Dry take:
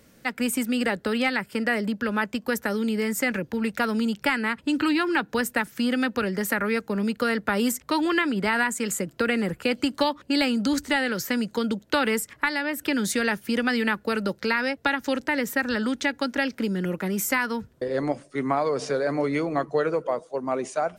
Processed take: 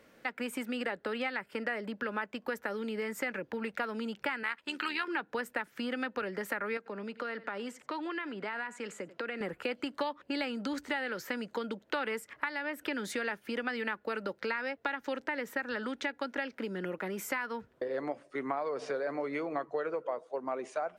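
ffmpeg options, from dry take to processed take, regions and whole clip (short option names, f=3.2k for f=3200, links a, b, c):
-filter_complex "[0:a]asettb=1/sr,asplit=3[a][b][c];[a]atrim=end=4.434[d];[b]atrim=start=4.43:end=5.08,asetpts=PTS-STARTPTS,afade=t=in:d=0.004:c=qsin,afade=t=out:st=0.646:d=0.004:c=qsin,tiltshelf=f=770:g=-9,tremolo=f=78:d=0.519[e];[c]atrim=start=5.076[f];[d][e]acrossfade=d=0.004:c1=hsin:c2=qsin[g];[g][f]acrossfade=d=0.004:c1=qsin:c2=hsin,asettb=1/sr,asplit=3[h][i][j];[h]atrim=end=6.774[k];[i]atrim=start=6.77:end=9.41,asetpts=PTS-STARTPTS,afade=t=in:d=0.004:c=qsin,afade=t=out:st=2.636:d=0.004:c=qsin,aecho=1:1:89:0.0631,atrim=end_sample=116424,acompressor=threshold=-35dB:ratio=2:attack=3.2:release=140:knee=1:detection=peak,highpass=140,lowpass=7.3k[l];[j]atrim=start=9.406[m];[k][l]acrossfade=d=0.004:c1=hsin:c2=qsin[n];[n][m]acrossfade=d=0.004:c1=qsin:c2=hsin,bass=f=250:g=-14,treble=f=4k:g=-13,acompressor=threshold=-35dB:ratio=2.5"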